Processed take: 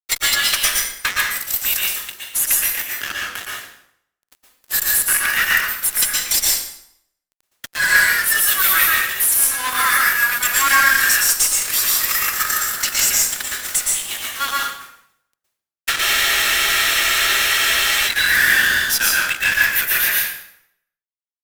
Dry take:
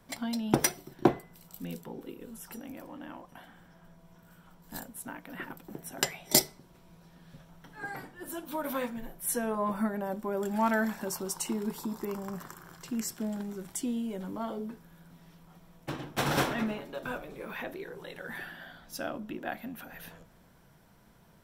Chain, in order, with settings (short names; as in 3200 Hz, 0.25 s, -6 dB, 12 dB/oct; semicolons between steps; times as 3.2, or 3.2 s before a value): steep high-pass 1500 Hz 36 dB/oct; high shelf 6400 Hz +4.5 dB; compressor 6:1, threshold -42 dBFS, peak gain reduction 24 dB; formant-preserving pitch shift +3.5 st; fuzz box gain 48 dB, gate -54 dBFS; plate-style reverb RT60 0.71 s, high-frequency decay 0.85×, pre-delay 0.105 s, DRR -3 dB; spectral freeze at 16.02, 2.06 s